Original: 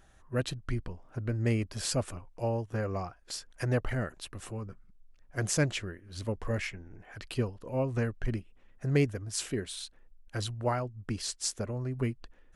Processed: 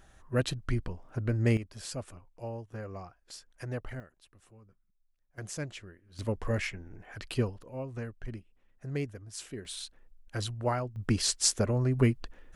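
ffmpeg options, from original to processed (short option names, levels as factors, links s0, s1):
-af "asetnsamples=n=441:p=0,asendcmd='1.57 volume volume -8dB;4 volume volume -18dB;5.38 volume volume -10dB;6.19 volume volume 1.5dB;7.63 volume volume -8dB;9.65 volume volume 0dB;10.96 volume volume 7dB',volume=1.33"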